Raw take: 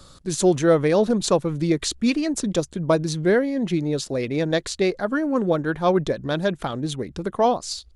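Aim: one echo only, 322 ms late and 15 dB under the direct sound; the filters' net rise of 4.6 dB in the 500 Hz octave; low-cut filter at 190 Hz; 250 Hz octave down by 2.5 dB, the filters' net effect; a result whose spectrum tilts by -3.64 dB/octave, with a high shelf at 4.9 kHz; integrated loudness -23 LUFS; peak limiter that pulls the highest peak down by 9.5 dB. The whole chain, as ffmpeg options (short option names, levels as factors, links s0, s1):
-af "highpass=190,equalizer=f=250:t=o:g=-5.5,equalizer=f=500:t=o:g=7,highshelf=f=4900:g=8,alimiter=limit=0.266:level=0:latency=1,aecho=1:1:322:0.178,volume=0.944"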